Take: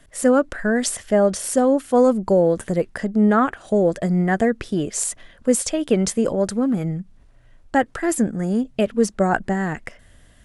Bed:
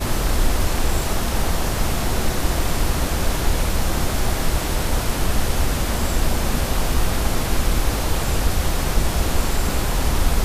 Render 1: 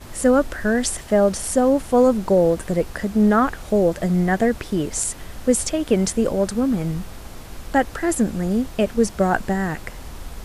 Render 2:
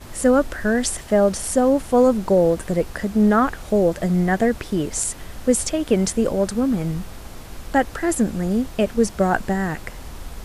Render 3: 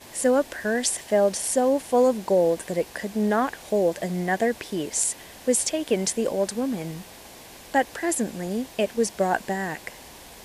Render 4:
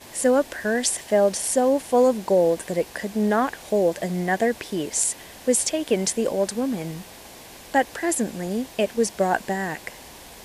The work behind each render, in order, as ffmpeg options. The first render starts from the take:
-filter_complex "[1:a]volume=0.15[s0];[0:a][s0]amix=inputs=2:normalize=0"
-af anull
-af "highpass=f=520:p=1,equalizer=f=1300:w=4.5:g=-11.5"
-af "volume=1.19"

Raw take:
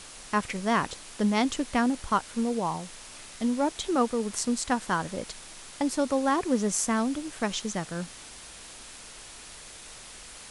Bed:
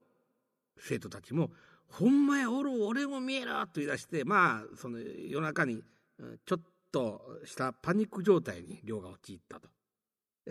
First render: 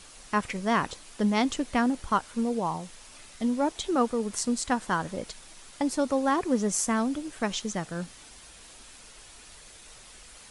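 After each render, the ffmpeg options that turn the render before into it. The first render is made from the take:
-af "afftdn=nr=6:nf=-46"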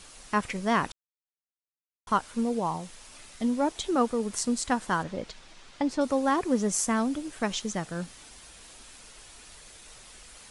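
-filter_complex "[0:a]asettb=1/sr,asplit=3[s0][s1][s2];[s0]atrim=end=5.034[s3];[s1]atrim=start=5.03:end=6.01,asetpts=PTS-STARTPTS,afade=t=in:d=0.004:c=qsin,afade=t=out:st=0.976:d=0.004:c=qsin,lowpass=4900[s4];[s2]atrim=start=6.006[s5];[s3][s4]acrossfade=d=0.004:c1=hsin:c2=qsin[s6];[s6][s5]acrossfade=d=0.004:c1=qsin:c2=hsin,asplit=3[s7][s8][s9];[s7]atrim=end=0.92,asetpts=PTS-STARTPTS,afade=t=out:st=0.916:d=0.004:c=hsin[s10];[s8]atrim=start=0.92:end=2.07,asetpts=PTS-STARTPTS,volume=0[s11];[s9]atrim=start=2.07,asetpts=PTS-STARTPTS,afade=t=in:d=0.004:c=hsin[s12];[s10][s11][s12]concat=n=3:v=0:a=1"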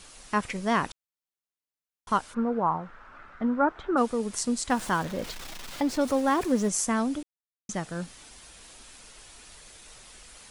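-filter_complex "[0:a]asplit=3[s0][s1][s2];[s0]afade=t=out:st=2.33:d=0.02[s3];[s1]lowpass=f=1400:t=q:w=4.5,afade=t=in:st=2.33:d=0.02,afade=t=out:st=3.96:d=0.02[s4];[s2]afade=t=in:st=3.96:d=0.02[s5];[s3][s4][s5]amix=inputs=3:normalize=0,asettb=1/sr,asplit=3[s6][s7][s8];[s6]atrim=end=4.704[s9];[s7]atrim=start=4.7:end=6.69,asetpts=PTS-STARTPTS,afade=t=in:d=0.004:c=qsin,afade=t=out:st=1.986:d=0.004:c=qsin,aeval=exprs='val(0)+0.5*0.0158*sgn(val(0))':c=same[s10];[s8]atrim=start=6.686[s11];[s9][s10]acrossfade=d=0.004:c1=hsin:c2=qsin[s12];[s12][s11]acrossfade=d=0.004:c1=qsin:c2=hsin,asplit=3[s13][s14][s15];[s13]atrim=end=7.23,asetpts=PTS-STARTPTS,afade=t=out:st=7.226:d=0.004:c=hsin[s16];[s14]atrim=start=7.23:end=7.69,asetpts=PTS-STARTPTS,volume=0[s17];[s15]atrim=start=7.69,asetpts=PTS-STARTPTS,afade=t=in:d=0.004:c=hsin[s18];[s16][s17][s18]concat=n=3:v=0:a=1"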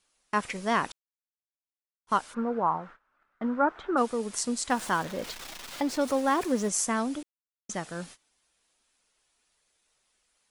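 -af "agate=range=0.0708:threshold=0.00708:ratio=16:detection=peak,lowshelf=f=170:g=-10"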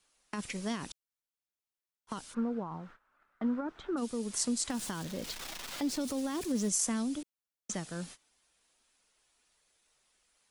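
-filter_complex "[0:a]alimiter=limit=0.106:level=0:latency=1:release=12,acrossover=split=320|3000[s0][s1][s2];[s1]acompressor=threshold=0.00794:ratio=6[s3];[s0][s3][s2]amix=inputs=3:normalize=0"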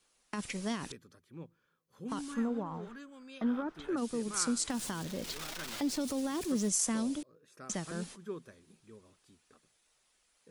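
-filter_complex "[1:a]volume=0.158[s0];[0:a][s0]amix=inputs=2:normalize=0"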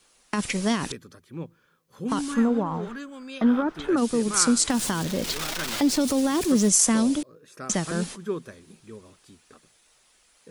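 -af "volume=3.76"

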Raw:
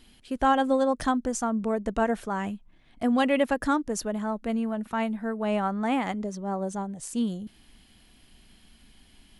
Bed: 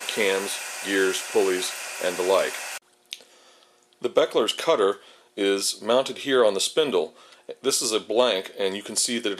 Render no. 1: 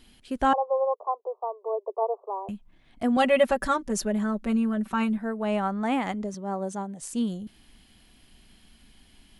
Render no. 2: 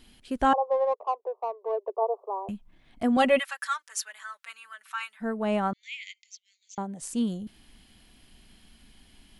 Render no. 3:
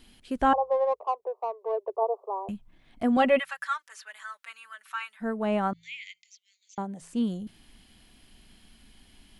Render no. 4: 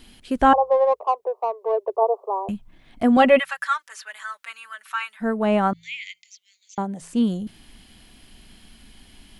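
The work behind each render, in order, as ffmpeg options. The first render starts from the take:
-filter_complex "[0:a]asettb=1/sr,asplit=3[s0][s1][s2];[s0]atrim=end=0.534[s3];[s1]atrim=start=0.53:end=2.49,asetpts=PTS-STARTPTS,afade=t=in:d=0.004:c=qsin,afade=t=out:st=1.956:d=0.004:c=qsin,asuperpass=centerf=660:order=20:qfactor=0.88[s4];[s2]atrim=start=2.486[s5];[s3][s4]acrossfade=d=0.004:c1=hsin:c2=qsin[s6];[s6][s5]acrossfade=d=0.004:c1=qsin:c2=hsin,asettb=1/sr,asplit=3[s7][s8][s9];[s7]atrim=end=3.164[s10];[s8]atrim=start=3.16:end=5.18,asetpts=PTS-STARTPTS,afade=t=in:d=0.004:c=qsin,afade=t=out:st=2.016:d=0.004:c=qsin,aecho=1:1:5.2:0.84,atrim=end_sample=89082[s11];[s9]atrim=start=5.176[s12];[s10][s11]acrossfade=d=0.004:c1=hsin:c2=qsin[s13];[s13][s12]acrossfade=d=0.004:c1=qsin:c2=hsin,asettb=1/sr,asplit=3[s14][s15][s16];[s14]atrim=end=6.344[s17];[s15]atrim=start=6.34:end=7.02,asetpts=PTS-STARTPTS,afade=t=in:d=0.004:c=qsin,afade=t=out:st=0.676:d=0.004:c=qsin,highpass=160[s18];[s16]atrim=start=7.016[s19];[s17][s18]acrossfade=d=0.004:c1=hsin:c2=qsin[s20];[s20][s19]acrossfade=d=0.004:c1=qsin:c2=hsin"
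-filter_complex "[0:a]asettb=1/sr,asplit=3[s0][s1][s2];[s0]atrim=end=0.714[s3];[s1]atrim=start=0.71:end=1.97,asetpts=PTS-STARTPTS,afade=t=in:d=0.004:c=qsin,afade=t=out:st=1.256:d=0.004:c=qsin,adynamicsmooth=sensitivity=5.5:basefreq=2400[s4];[s2]atrim=start=1.966[s5];[s3][s4]acrossfade=d=0.004:c1=hsin:c2=qsin[s6];[s6][s5]acrossfade=d=0.004:c1=qsin:c2=hsin,asplit=3[s7][s8][s9];[s7]afade=t=out:st=3.38:d=0.02[s10];[s8]highpass=f=1300:w=0.5412,highpass=f=1300:w=1.3066,afade=t=in:st=3.38:d=0.02,afade=t=out:st=5.2:d=0.02[s11];[s9]afade=t=in:st=5.2:d=0.02[s12];[s10][s11][s12]amix=inputs=3:normalize=0,asettb=1/sr,asplit=3[s13][s14][s15];[s13]atrim=end=5.734[s16];[s14]atrim=start=5.73:end=6.78,asetpts=PTS-STARTPTS,afade=t=in:d=0.004:c=qsin,afade=t=out:st=1.046:d=0.004:c=qsin,asuperpass=centerf=4000:order=20:qfactor=0.78[s17];[s15]atrim=start=6.776[s18];[s16][s17]acrossfade=d=0.004:c1=hsin:c2=qsin[s19];[s19][s18]acrossfade=d=0.004:c1=qsin:c2=hsin"
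-filter_complex "[0:a]bandreject=f=55.71:t=h:w=4,bandreject=f=111.42:t=h:w=4,bandreject=f=167.13:t=h:w=4,acrossover=split=3200[s0][s1];[s1]acompressor=threshold=0.00316:ratio=4:attack=1:release=60[s2];[s0][s2]amix=inputs=2:normalize=0"
-af "volume=2.24"

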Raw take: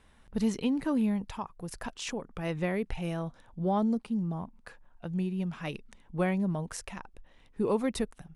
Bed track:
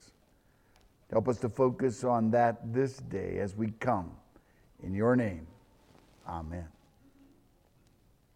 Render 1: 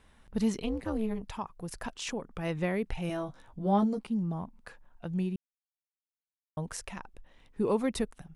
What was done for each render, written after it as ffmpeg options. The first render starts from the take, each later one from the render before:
-filter_complex "[0:a]asettb=1/sr,asplit=3[s0][s1][s2];[s0]atrim=end=0.624[s3];[s1]atrim=start=0.62:end=1.23,asetpts=PTS-STARTPTS,afade=t=in:d=0.004:c=qsin,afade=t=out:st=0.606:d=0.004:c=qsin,tremolo=f=220:d=1[s4];[s2]atrim=start=1.226[s5];[s3][s4]acrossfade=d=0.004:c1=hsin:c2=qsin[s6];[s6][s5]acrossfade=d=0.004:c1=qsin:c2=hsin,asettb=1/sr,asplit=3[s7][s8][s9];[s7]atrim=end=3.084[s10];[s8]atrim=start=3.08:end=4.07,asetpts=PTS-STARTPTS,afade=t=in:d=0.004:c=qsin,afade=t=out:st=0.986:d=0.004:c=qsin,asplit=2[s11][s12];[s12]adelay=15,volume=0.631[s13];[s11][s13]amix=inputs=2:normalize=0,atrim=end_sample=43659[s14];[s9]atrim=start=4.066[s15];[s10][s14]acrossfade=d=0.004:c1=hsin:c2=qsin[s16];[s16][s15]acrossfade=d=0.004:c1=qsin:c2=hsin,asplit=3[s17][s18][s19];[s17]atrim=end=5.36,asetpts=PTS-STARTPTS,afade=t=out:st=5.356:d=0.004:c=hsin[s20];[s18]atrim=start=5.36:end=6.57,asetpts=PTS-STARTPTS,volume=0[s21];[s19]atrim=start=6.57,asetpts=PTS-STARTPTS,afade=t=in:d=0.004:c=hsin[s22];[s20][s21][s22]concat=n=3:v=0:a=1"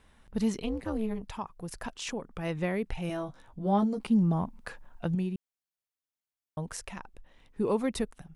-filter_complex "[0:a]asplit=3[s0][s1][s2];[s0]atrim=end=4.002[s3];[s1]atrim=start=3.998:end=5.152,asetpts=PTS-STARTPTS,volume=2.24[s4];[s2]atrim=start=5.148[s5];[s3][s4]acrossfade=d=0.004:c1=hsin:c2=hsin[s6];[s6][s5]acrossfade=d=0.004:c1=hsin:c2=hsin"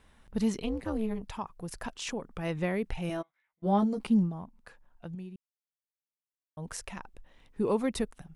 -filter_complex "[0:a]asplit=3[s0][s1][s2];[s0]afade=t=out:st=3.21:d=0.02[s3];[s1]bandpass=f=2100:t=q:w=13,afade=t=in:st=3.21:d=0.02,afade=t=out:st=3.62:d=0.02[s4];[s2]afade=t=in:st=3.62:d=0.02[s5];[s3][s4][s5]amix=inputs=3:normalize=0,asplit=3[s6][s7][s8];[s6]atrim=end=4.31,asetpts=PTS-STARTPTS,afade=t=out:st=4.19:d=0.12:silence=0.281838[s9];[s7]atrim=start=4.31:end=6.56,asetpts=PTS-STARTPTS,volume=0.282[s10];[s8]atrim=start=6.56,asetpts=PTS-STARTPTS,afade=t=in:d=0.12:silence=0.281838[s11];[s9][s10][s11]concat=n=3:v=0:a=1"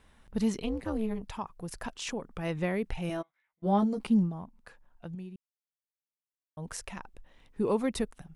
-af anull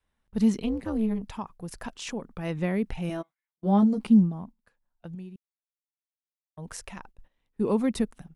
-af "agate=range=0.141:threshold=0.00398:ratio=16:detection=peak,adynamicequalizer=threshold=0.01:dfrequency=220:dqfactor=1.5:tfrequency=220:tqfactor=1.5:attack=5:release=100:ratio=0.375:range=3.5:mode=boostabove:tftype=bell"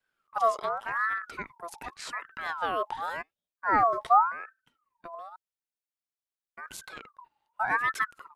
-af "aeval=exprs='val(0)*sin(2*PI*1200*n/s+1200*0.3/0.88*sin(2*PI*0.88*n/s))':c=same"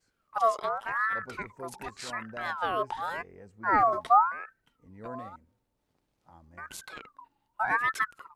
-filter_complex "[1:a]volume=0.15[s0];[0:a][s0]amix=inputs=2:normalize=0"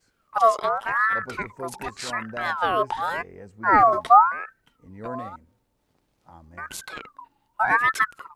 -af "volume=2.24"

